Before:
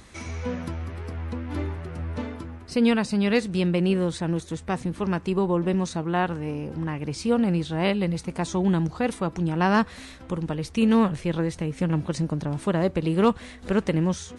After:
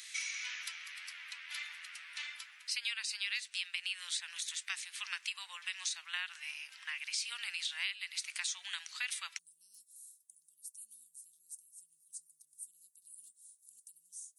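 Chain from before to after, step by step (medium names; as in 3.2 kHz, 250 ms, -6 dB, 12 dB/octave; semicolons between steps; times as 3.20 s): inverse Chebyshev high-pass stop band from 360 Hz, stop band 80 dB, from 9.37 s stop band from 2 kHz; compression 6:1, threshold -41 dBFS, peak gain reduction 13.5 dB; trim +7 dB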